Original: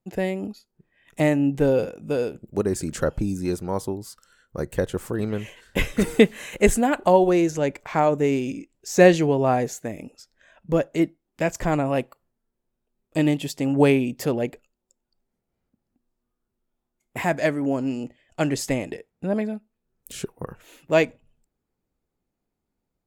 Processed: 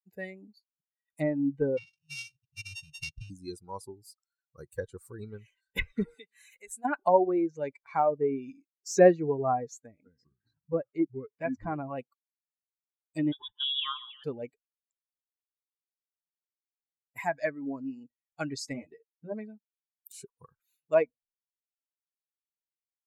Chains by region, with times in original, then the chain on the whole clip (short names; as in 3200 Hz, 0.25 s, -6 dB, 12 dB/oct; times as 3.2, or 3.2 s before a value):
1.77–3.3 sample sorter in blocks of 16 samples + elliptic band-stop 150–2600 Hz + decimation joined by straight lines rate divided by 3×
6.14–6.85 low shelf 490 Hz -10 dB + compressor 2.5:1, threshold -35 dBFS
9.86–11.98 LPF 2600 Hz 6 dB/oct + echoes that change speed 0.195 s, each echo -4 st, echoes 3, each echo -6 dB
13.32–14.24 comb 5.9 ms, depth 31% + band-limited delay 0.142 s, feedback 74%, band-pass 990 Hz, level -9 dB + inverted band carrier 3600 Hz
18.73–19.32 high shelf 2500 Hz -7.5 dB + doubler 13 ms -3 dB
whole clip: per-bin expansion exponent 2; treble ducked by the level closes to 1200 Hz, closed at -21 dBFS; low shelf 250 Hz -10.5 dB